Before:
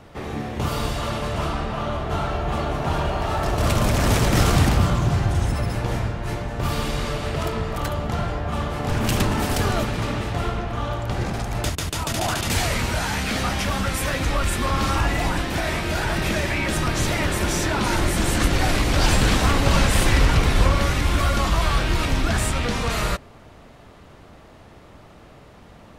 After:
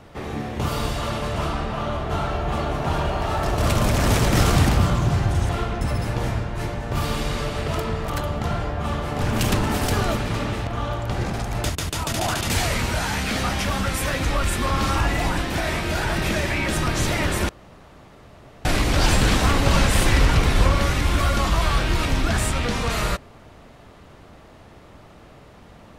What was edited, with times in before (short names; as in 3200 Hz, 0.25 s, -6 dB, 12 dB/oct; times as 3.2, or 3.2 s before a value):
10.35–10.67 move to 5.49
17.49–18.65 room tone